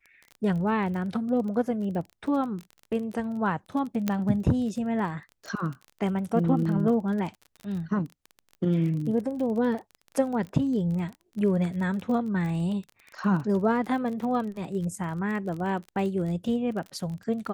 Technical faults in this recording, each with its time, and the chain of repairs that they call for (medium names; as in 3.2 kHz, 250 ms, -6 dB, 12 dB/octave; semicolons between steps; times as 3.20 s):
crackle 30 per s -34 dBFS
4.08 s: pop -12 dBFS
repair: de-click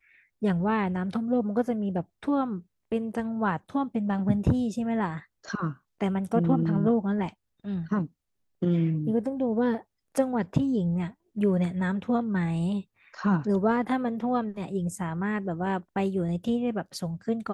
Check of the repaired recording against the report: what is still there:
nothing left